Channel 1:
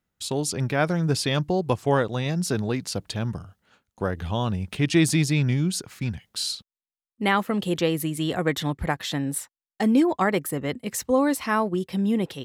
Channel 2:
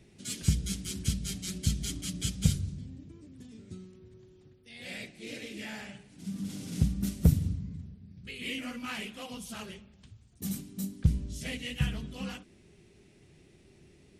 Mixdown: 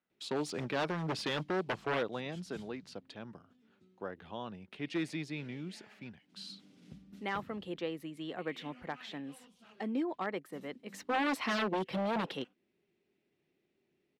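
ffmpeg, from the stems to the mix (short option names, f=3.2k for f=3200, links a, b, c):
-filter_complex "[0:a]volume=7.5dB,afade=t=out:st=1.79:d=0.7:silence=0.375837,afade=t=in:st=10.85:d=0.5:silence=0.237137,asplit=2[a][b];[1:a]adelay=100,volume=-16.5dB[c];[b]apad=whole_len=634697[d];[c][d]sidechaincompress=threshold=-29dB:ratio=8:attack=16:release=601[e];[a][e]amix=inputs=2:normalize=0,aeval=exprs='0.0562*(abs(mod(val(0)/0.0562+3,4)-2)-1)':c=same,acrossover=split=190 4300:gain=0.1 1 0.141[f][g][h];[f][g][h]amix=inputs=3:normalize=0"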